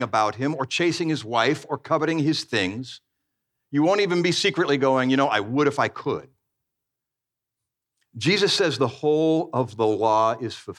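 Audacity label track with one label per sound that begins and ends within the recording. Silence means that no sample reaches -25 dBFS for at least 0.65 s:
3.740000	6.180000	sound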